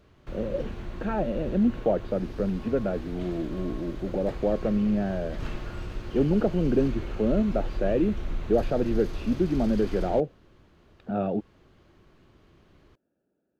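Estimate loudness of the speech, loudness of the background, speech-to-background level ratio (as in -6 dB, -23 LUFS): -27.5 LUFS, -38.5 LUFS, 11.0 dB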